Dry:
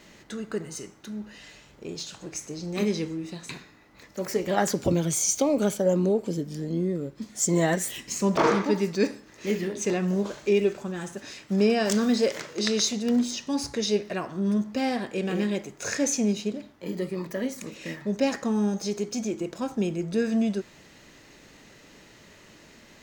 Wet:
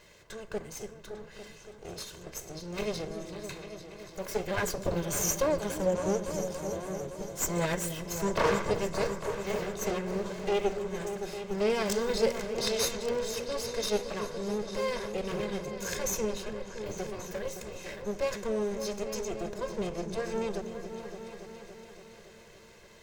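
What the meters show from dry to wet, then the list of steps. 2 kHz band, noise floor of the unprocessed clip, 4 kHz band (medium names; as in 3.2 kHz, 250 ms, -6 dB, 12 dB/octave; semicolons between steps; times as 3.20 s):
-3.0 dB, -53 dBFS, -4.0 dB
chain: comb filter that takes the minimum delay 1.9 ms; delay with an opening low-pass 283 ms, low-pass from 400 Hz, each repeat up 2 oct, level -6 dB; trim -3.5 dB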